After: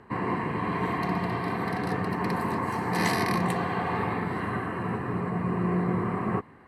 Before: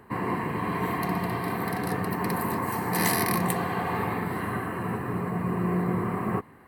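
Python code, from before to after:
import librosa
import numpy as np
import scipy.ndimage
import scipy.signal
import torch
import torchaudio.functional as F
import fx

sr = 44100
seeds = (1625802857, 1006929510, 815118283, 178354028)

y = scipy.signal.sosfilt(scipy.signal.butter(2, 6000.0, 'lowpass', fs=sr, output='sos'), x)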